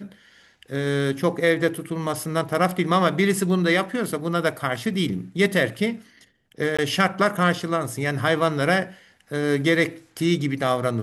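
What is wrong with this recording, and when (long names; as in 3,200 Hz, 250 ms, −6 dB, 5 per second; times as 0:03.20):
0:06.77–0:06.79: drop-out 16 ms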